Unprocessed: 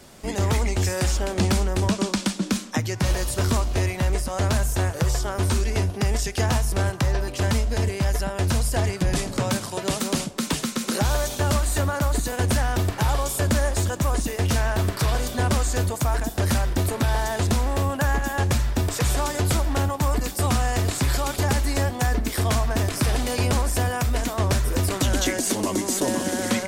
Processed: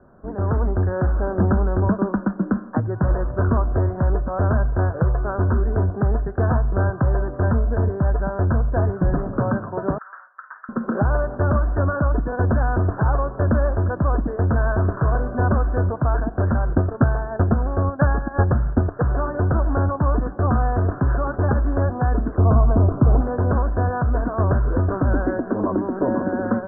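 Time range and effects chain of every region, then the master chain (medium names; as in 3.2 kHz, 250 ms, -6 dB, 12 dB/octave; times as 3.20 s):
9.98–10.69 s: high-pass 1.4 kHz 24 dB/octave + doubling 50 ms -12 dB
16.69–19.02 s: band-stop 1 kHz, Q 17 + transient shaper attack +9 dB, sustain -10 dB
22.35–23.21 s: steep low-pass 1.3 kHz + bass shelf 420 Hz +5.5 dB
whole clip: steep low-pass 1.6 kHz 96 dB/octave; band-stop 860 Hz, Q 12; level rider gain up to 6 dB; trim -2.5 dB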